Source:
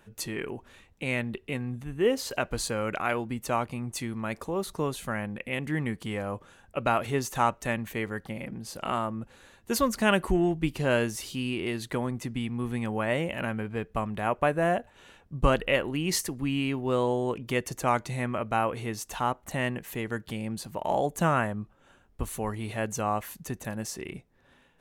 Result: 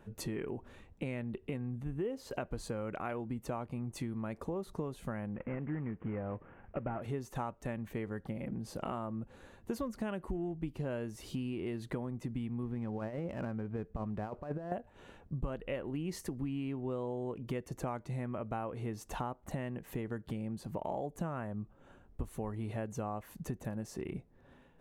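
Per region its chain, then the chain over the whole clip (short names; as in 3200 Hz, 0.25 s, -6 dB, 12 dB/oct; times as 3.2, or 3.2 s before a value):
5.34–7.02 CVSD 16 kbps + LPF 2400 Hz 24 dB/oct
12.63–14.72 switching dead time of 0.08 ms + LPF 2300 Hz 6 dB/oct + negative-ratio compressor -30 dBFS, ratio -0.5
whole clip: tilt shelf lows +7 dB, about 1300 Hz; compressor 6:1, threshold -32 dBFS; gain -3 dB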